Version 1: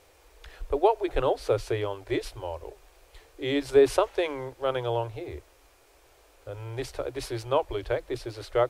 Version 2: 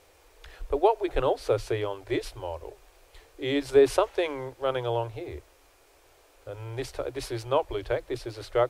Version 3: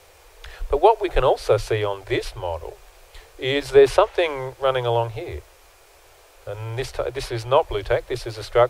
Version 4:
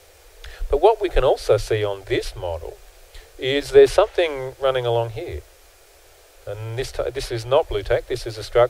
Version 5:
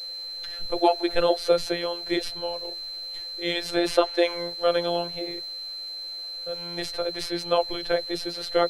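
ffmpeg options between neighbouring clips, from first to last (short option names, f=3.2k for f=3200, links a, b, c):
-af "bandreject=f=50:t=h:w=6,bandreject=f=100:t=h:w=6"
-filter_complex "[0:a]equalizer=f=260:t=o:w=0.69:g=-11.5,acrossover=split=340|1100|4400[a][b][c][d];[d]alimiter=level_in=14dB:limit=-24dB:level=0:latency=1:release=420,volume=-14dB[e];[a][b][c][e]amix=inputs=4:normalize=0,volume=8.5dB"
-af "equalizer=f=160:t=o:w=0.67:g=-7,equalizer=f=1k:t=o:w=0.67:g=-8,equalizer=f=2.5k:t=o:w=0.67:g=-3,volume=2.5dB"
-af "afftfilt=real='hypot(re,im)*cos(PI*b)':imag='0':win_size=1024:overlap=0.75,aeval=exprs='val(0)+0.0224*sin(2*PI*4100*n/s)':c=same,lowshelf=f=200:g=-4"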